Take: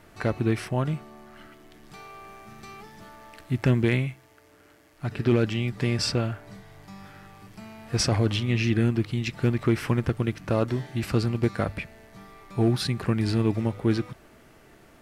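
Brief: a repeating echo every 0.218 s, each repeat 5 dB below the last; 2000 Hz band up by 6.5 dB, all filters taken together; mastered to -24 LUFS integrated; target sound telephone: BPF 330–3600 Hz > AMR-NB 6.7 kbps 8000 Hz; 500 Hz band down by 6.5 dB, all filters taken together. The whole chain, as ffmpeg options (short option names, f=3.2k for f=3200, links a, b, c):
-af "highpass=330,lowpass=3.6k,equalizer=f=500:t=o:g=-7.5,equalizer=f=2k:t=o:g=9,aecho=1:1:218|436|654|872|1090|1308|1526:0.562|0.315|0.176|0.0988|0.0553|0.031|0.0173,volume=8dB" -ar 8000 -c:a libopencore_amrnb -b:a 6700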